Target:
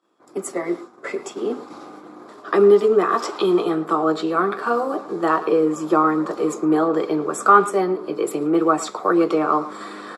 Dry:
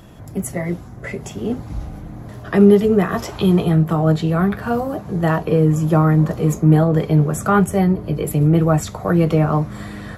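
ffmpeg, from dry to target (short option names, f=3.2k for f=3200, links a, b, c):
-filter_complex "[0:a]agate=range=-33dB:threshold=-27dB:ratio=3:detection=peak,highshelf=f=5.1k:g=5.5,asplit=2[a][b];[b]adelay=110,highpass=300,lowpass=3.4k,asoftclip=type=hard:threshold=-11dB,volume=-15dB[c];[a][c]amix=inputs=2:normalize=0,asplit=2[d][e];[e]acompressor=threshold=-30dB:ratio=6,volume=0.5dB[f];[d][f]amix=inputs=2:normalize=0,highpass=f=310:w=0.5412,highpass=f=310:w=1.3066,equalizer=f=350:t=q:w=4:g=5,equalizer=f=640:t=q:w=4:g=-5,equalizer=f=1.2k:t=q:w=4:g=9,equalizer=f=1.9k:t=q:w=4:g=-6,equalizer=f=2.9k:t=q:w=4:g=-6,equalizer=f=6.3k:t=q:w=4:g=-9,lowpass=f=8k:w=0.5412,lowpass=f=8k:w=1.3066,volume=-1dB"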